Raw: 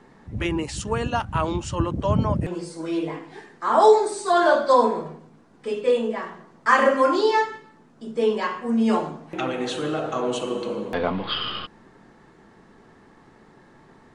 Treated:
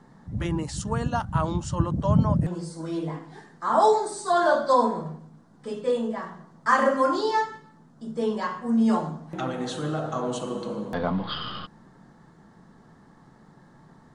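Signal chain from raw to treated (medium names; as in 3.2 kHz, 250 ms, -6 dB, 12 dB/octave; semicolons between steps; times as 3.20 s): fifteen-band graphic EQ 160 Hz +7 dB, 400 Hz -6 dB, 2.5 kHz -11 dB; trim -1.5 dB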